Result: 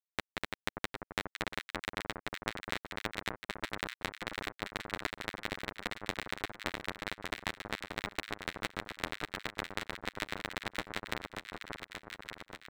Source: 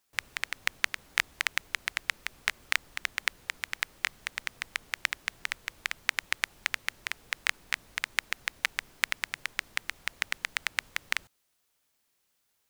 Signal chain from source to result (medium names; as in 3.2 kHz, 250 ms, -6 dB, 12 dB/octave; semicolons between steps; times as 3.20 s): comb filter that takes the minimum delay 9.8 ms; high-pass 44 Hz 6 dB/octave; treble shelf 12 kHz +3 dB; hum notches 60/120/180 Hz; compression 10:1, threshold -30 dBFS, peak gain reduction 11.5 dB; crossover distortion -47 dBFS; echo whose repeats swap between lows and highs 582 ms, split 1.4 kHz, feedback 74%, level -3.5 dB; trim -1 dB